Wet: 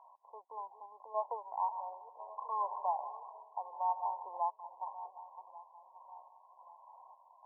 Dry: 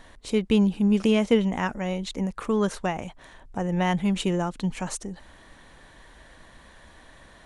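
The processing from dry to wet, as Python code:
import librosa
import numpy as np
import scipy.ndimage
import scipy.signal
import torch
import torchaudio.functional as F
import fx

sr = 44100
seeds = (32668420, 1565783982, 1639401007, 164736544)

y = fx.reverse_delay_fb(x, sr, ms=568, feedback_pct=58, wet_db=-12.5)
y = scipy.signal.sosfilt(scipy.signal.butter(6, 820.0, 'highpass', fs=sr, output='sos'), y)
y = fx.tremolo_random(y, sr, seeds[0], hz=3.5, depth_pct=55)
y = fx.brickwall_lowpass(y, sr, high_hz=1100.0)
y = fx.echo_heads(y, sr, ms=79, heads='first and second', feedback_pct=54, wet_db=-16.5, at=(1.61, 4.26))
y = y * 10.0 ** (5.0 / 20.0)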